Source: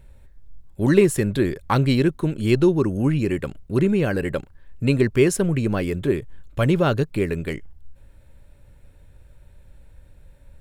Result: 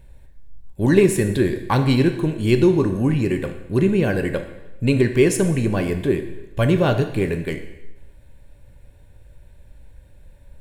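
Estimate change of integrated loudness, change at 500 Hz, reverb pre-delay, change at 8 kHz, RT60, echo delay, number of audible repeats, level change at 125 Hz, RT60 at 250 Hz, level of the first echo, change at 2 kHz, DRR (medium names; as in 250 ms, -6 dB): +1.5 dB, +2.0 dB, 6 ms, +2.0 dB, 1.0 s, no echo, no echo, +1.5 dB, 1.1 s, no echo, +2.0 dB, 6.5 dB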